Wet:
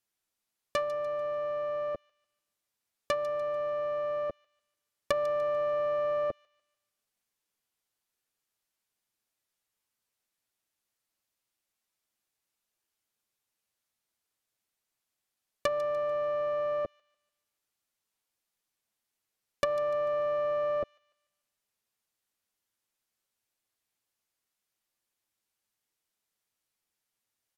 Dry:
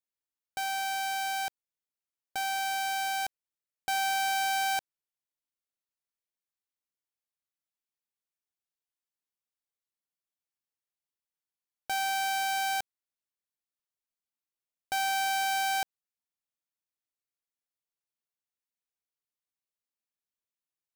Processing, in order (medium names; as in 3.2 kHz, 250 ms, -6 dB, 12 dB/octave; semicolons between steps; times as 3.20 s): comb 7 ms, depth 40%; tape speed -24%; low-pass that closes with the level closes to 600 Hz, closed at -30 dBFS; feedback echo behind a high-pass 147 ms, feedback 40%, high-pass 2.9 kHz, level -13 dB; trim +7.5 dB